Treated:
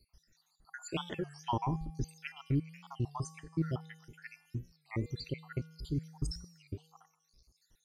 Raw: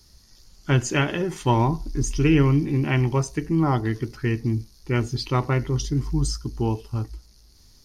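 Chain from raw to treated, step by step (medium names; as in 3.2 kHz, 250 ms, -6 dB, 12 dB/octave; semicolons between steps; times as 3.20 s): random holes in the spectrogram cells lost 74%; feedback comb 160 Hz, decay 1 s, harmonics odd, mix 70%; warped record 33 1/3 rpm, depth 160 cents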